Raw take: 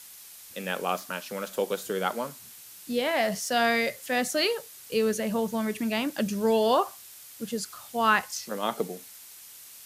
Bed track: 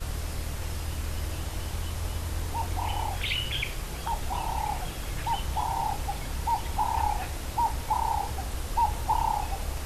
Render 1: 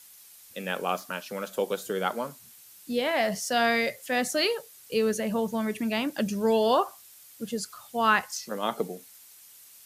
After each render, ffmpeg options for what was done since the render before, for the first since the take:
ffmpeg -i in.wav -af "afftdn=noise_reduction=6:noise_floor=-48" out.wav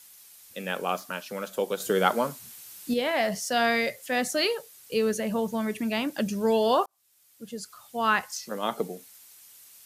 ffmpeg -i in.wav -filter_complex "[0:a]asettb=1/sr,asplit=3[link_01][link_02][link_03];[link_01]atrim=end=1.804[link_04];[link_02]atrim=start=1.8:end=2.94,asetpts=PTS-STARTPTS,afade=type=in:duration=0.004:curve=qsin,afade=type=out:start_time=1.136:duration=0.004:curve=qsin,acontrast=49[link_05];[link_03]atrim=start=2.936[link_06];[link_04][link_05]acrossfade=duration=0.004:curve1=hsin:curve2=qsin[link_07];[link_07][link_06]acrossfade=duration=0.004:curve1=qsin:curve2=hsin,asplit=2[link_08][link_09];[link_08]atrim=end=6.86,asetpts=PTS-STARTPTS,afade=type=out:start_time=6.856:duration=0.004:curve=hsin[link_10];[link_09]atrim=start=6.86,asetpts=PTS-STARTPTS,afade=type=in:duration=1.96:curve=qsin[link_11];[link_10][link_11]concat=n=2:v=0:a=1" out.wav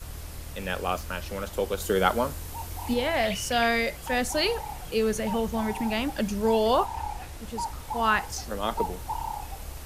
ffmpeg -i in.wav -i bed.wav -filter_complex "[1:a]volume=-6.5dB[link_01];[0:a][link_01]amix=inputs=2:normalize=0" out.wav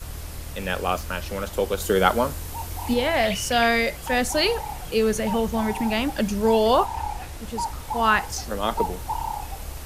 ffmpeg -i in.wav -af "volume=4dB" out.wav

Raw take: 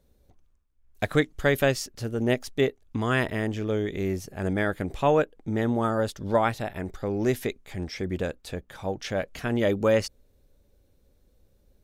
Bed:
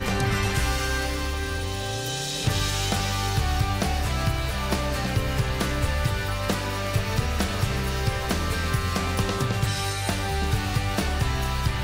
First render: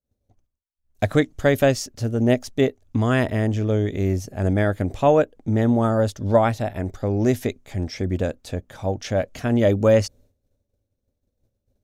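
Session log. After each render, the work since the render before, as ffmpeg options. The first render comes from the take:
ffmpeg -i in.wav -af "agate=range=-33dB:threshold=-50dB:ratio=3:detection=peak,equalizer=frequency=100:width_type=o:width=0.67:gain=11,equalizer=frequency=250:width_type=o:width=0.67:gain=7,equalizer=frequency=630:width_type=o:width=0.67:gain=7,equalizer=frequency=6300:width_type=o:width=0.67:gain=5" out.wav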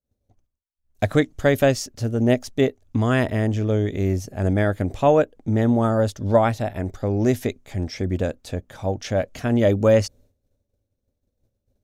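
ffmpeg -i in.wav -af anull out.wav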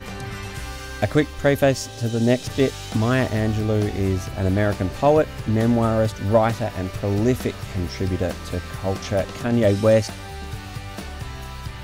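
ffmpeg -i in.wav -i bed.wav -filter_complex "[1:a]volume=-8dB[link_01];[0:a][link_01]amix=inputs=2:normalize=0" out.wav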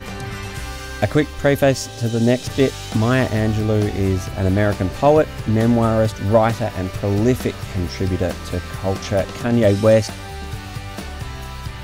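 ffmpeg -i in.wav -af "volume=3dB,alimiter=limit=-3dB:level=0:latency=1" out.wav

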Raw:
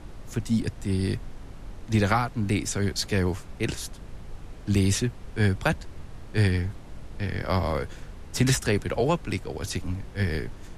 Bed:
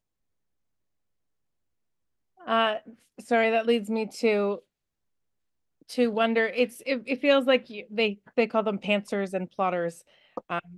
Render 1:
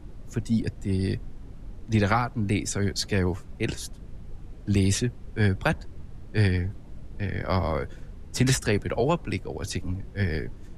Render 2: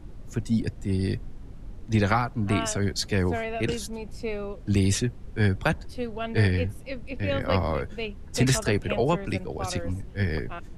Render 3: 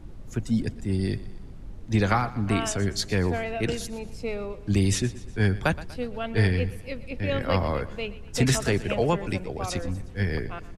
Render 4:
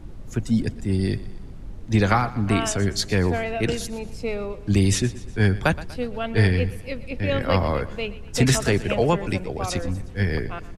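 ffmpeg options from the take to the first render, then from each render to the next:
ffmpeg -i in.wav -af "afftdn=noise_reduction=9:noise_floor=-43" out.wav
ffmpeg -i in.wav -i bed.wav -filter_complex "[1:a]volume=-8.5dB[link_01];[0:a][link_01]amix=inputs=2:normalize=0" out.wav
ffmpeg -i in.wav -af "aecho=1:1:121|242|363|484:0.133|0.068|0.0347|0.0177" out.wav
ffmpeg -i in.wav -af "volume=3.5dB" out.wav

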